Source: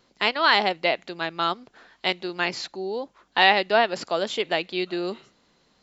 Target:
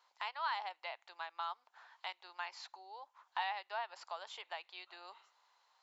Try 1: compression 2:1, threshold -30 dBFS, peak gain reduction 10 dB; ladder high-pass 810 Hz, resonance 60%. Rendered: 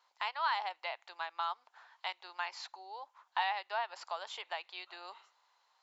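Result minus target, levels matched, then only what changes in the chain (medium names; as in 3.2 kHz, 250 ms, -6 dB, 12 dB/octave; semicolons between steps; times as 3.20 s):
compression: peak gain reduction -5 dB
change: compression 2:1, threshold -39.5 dBFS, peak gain reduction 15 dB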